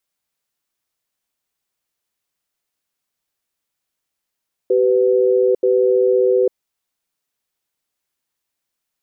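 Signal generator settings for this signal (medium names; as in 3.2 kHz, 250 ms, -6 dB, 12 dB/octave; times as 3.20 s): cadence 384 Hz, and 499 Hz, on 0.85 s, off 0.08 s, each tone -14.5 dBFS 1.82 s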